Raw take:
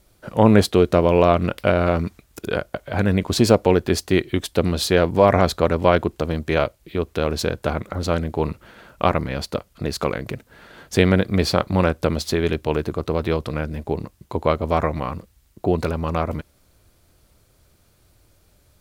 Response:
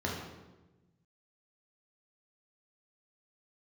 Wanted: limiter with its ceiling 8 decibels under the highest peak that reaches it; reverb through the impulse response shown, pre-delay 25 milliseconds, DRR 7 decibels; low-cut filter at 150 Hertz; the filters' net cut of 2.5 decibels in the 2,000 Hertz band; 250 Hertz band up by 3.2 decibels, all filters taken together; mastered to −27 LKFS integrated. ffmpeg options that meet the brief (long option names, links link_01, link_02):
-filter_complex "[0:a]highpass=150,equalizer=frequency=250:width_type=o:gain=5.5,equalizer=frequency=2000:width_type=o:gain=-3.5,alimiter=limit=-6dB:level=0:latency=1,asplit=2[link_01][link_02];[1:a]atrim=start_sample=2205,adelay=25[link_03];[link_02][link_03]afir=irnorm=-1:irlink=0,volume=-14dB[link_04];[link_01][link_04]amix=inputs=2:normalize=0,volume=-7.5dB"